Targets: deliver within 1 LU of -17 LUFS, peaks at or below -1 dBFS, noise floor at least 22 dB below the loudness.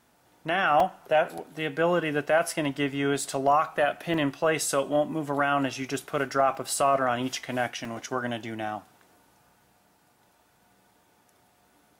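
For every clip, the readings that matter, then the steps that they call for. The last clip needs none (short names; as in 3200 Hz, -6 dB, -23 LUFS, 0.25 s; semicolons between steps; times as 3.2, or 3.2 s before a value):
dropouts 6; longest dropout 2.7 ms; loudness -26.5 LUFS; peak -11.5 dBFS; loudness target -17.0 LUFS
-> interpolate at 0.8/1.38/2.51/4.14/6.55/7.85, 2.7 ms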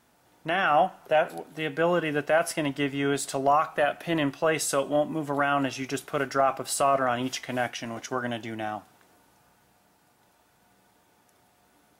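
dropouts 0; loudness -26.5 LUFS; peak -11.5 dBFS; loudness target -17.0 LUFS
-> gain +9.5 dB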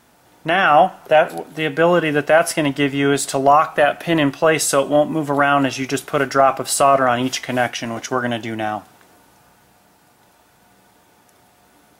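loudness -17.0 LUFS; peak -2.0 dBFS; noise floor -55 dBFS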